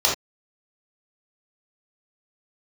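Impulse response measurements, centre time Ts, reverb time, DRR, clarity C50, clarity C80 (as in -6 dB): 31 ms, no single decay rate, -4.5 dB, 4.5 dB, 12.5 dB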